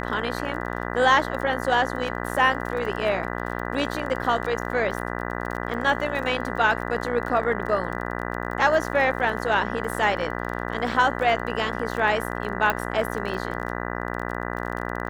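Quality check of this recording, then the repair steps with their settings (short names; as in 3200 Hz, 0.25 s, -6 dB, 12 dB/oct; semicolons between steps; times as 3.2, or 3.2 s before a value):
buzz 60 Hz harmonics 33 -30 dBFS
crackle 26/s -31 dBFS
12.7 pop -9 dBFS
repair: de-click; de-hum 60 Hz, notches 33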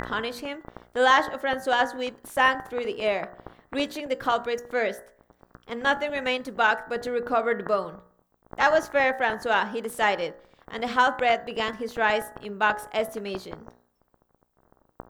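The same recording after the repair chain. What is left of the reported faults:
none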